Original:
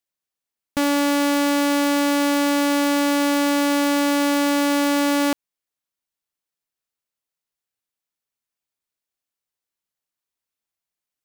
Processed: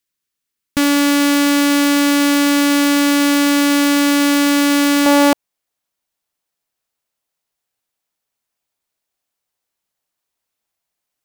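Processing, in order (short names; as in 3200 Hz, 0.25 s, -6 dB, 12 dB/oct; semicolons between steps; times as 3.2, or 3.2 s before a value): bell 710 Hz -11 dB 0.87 oct, from 5.06 s +4 dB; gain +7.5 dB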